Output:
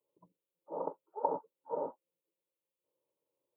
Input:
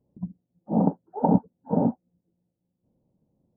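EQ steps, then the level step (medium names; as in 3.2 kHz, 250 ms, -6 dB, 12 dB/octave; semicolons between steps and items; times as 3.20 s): high-pass 800 Hz 12 dB/octave; peaking EQ 1.2 kHz -3.5 dB 1.7 oct; static phaser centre 1.1 kHz, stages 8; +3.0 dB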